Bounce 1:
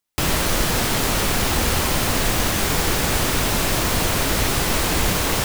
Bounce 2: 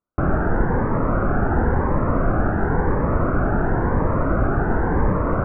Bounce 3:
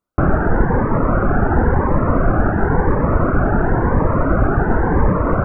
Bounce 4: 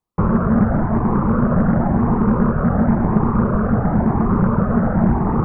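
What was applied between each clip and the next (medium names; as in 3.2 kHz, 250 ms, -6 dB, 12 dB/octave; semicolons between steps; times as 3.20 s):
elliptic low-pass 1.5 kHz, stop band 60 dB; Shepard-style phaser rising 0.95 Hz; trim +4.5 dB
reverb removal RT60 0.51 s; trim +5.5 dB
frequency shift -240 Hz; loudspeaker Doppler distortion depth 0.32 ms; trim -1.5 dB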